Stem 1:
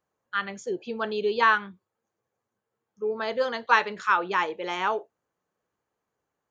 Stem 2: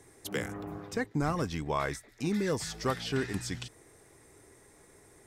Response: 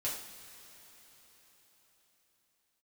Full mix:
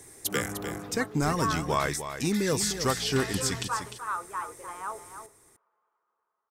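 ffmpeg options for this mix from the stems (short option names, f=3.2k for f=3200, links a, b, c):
-filter_complex "[0:a]equalizer=f=1.2k:w=1.8:g=11,asplit=2[a][b];[b]highpass=f=720:p=1,volume=11dB,asoftclip=type=tanh:threshold=0dB[c];[a][c]amix=inputs=2:normalize=0,lowpass=f=1.1k:p=1,volume=-6dB,highshelf=f=3.5k:g=-11.5,volume=-17.5dB,asplit=3[d][e][f];[e]volume=-23.5dB[g];[f]volume=-9dB[h];[1:a]highshelf=f=4.6k:g=11.5,volume=3dB,asplit=2[i][j];[j]volume=-9.5dB[k];[2:a]atrim=start_sample=2205[l];[g][l]afir=irnorm=-1:irlink=0[m];[h][k]amix=inputs=2:normalize=0,aecho=0:1:301:1[n];[d][i][m][n]amix=inputs=4:normalize=0"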